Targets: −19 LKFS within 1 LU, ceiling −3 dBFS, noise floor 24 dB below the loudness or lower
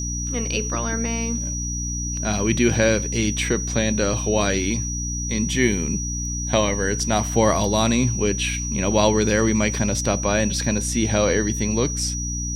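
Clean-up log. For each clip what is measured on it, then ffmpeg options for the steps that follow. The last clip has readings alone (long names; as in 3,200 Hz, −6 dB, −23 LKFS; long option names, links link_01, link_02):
mains hum 60 Hz; hum harmonics up to 300 Hz; level of the hum −26 dBFS; interfering tone 5,800 Hz; level of the tone −28 dBFS; integrated loudness −21.5 LKFS; sample peak −4.0 dBFS; target loudness −19.0 LKFS
→ -af "bandreject=frequency=60:width_type=h:width=6,bandreject=frequency=120:width_type=h:width=6,bandreject=frequency=180:width_type=h:width=6,bandreject=frequency=240:width_type=h:width=6,bandreject=frequency=300:width_type=h:width=6"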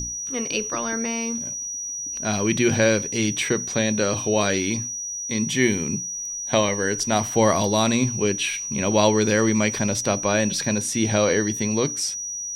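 mains hum none found; interfering tone 5,800 Hz; level of the tone −28 dBFS
→ -af "bandreject=frequency=5800:width=30"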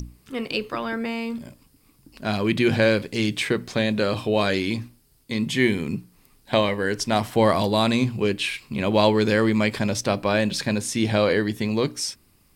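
interfering tone none found; integrated loudness −23.0 LKFS; sample peak −4.5 dBFS; target loudness −19.0 LKFS
→ -af "volume=4dB,alimiter=limit=-3dB:level=0:latency=1"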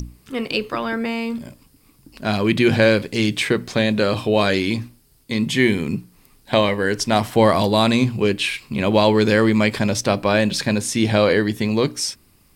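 integrated loudness −19.0 LKFS; sample peak −3.0 dBFS; background noise floor −56 dBFS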